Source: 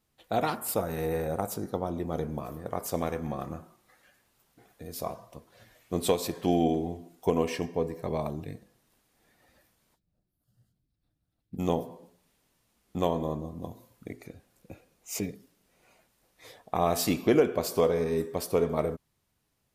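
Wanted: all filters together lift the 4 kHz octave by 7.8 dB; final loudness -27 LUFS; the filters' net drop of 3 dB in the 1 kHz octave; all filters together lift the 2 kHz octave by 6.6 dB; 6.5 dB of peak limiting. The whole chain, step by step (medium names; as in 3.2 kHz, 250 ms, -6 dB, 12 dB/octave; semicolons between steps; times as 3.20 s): peaking EQ 1 kHz -6.5 dB; peaking EQ 2 kHz +7.5 dB; peaking EQ 4 kHz +8 dB; trim +4.5 dB; peak limiter -11.5 dBFS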